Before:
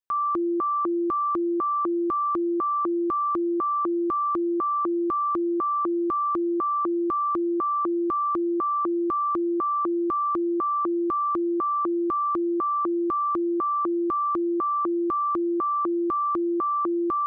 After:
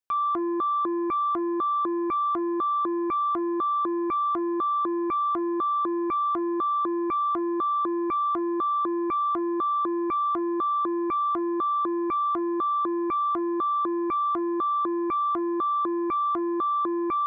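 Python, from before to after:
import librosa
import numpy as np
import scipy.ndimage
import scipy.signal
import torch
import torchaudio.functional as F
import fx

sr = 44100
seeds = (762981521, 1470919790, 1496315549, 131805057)

y = fx.transformer_sat(x, sr, knee_hz=390.0)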